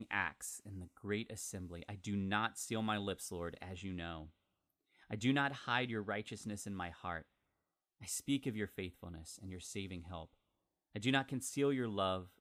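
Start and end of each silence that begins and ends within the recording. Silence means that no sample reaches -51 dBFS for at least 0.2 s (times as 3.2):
4.28–5.1
7.22–8.01
10.25–10.95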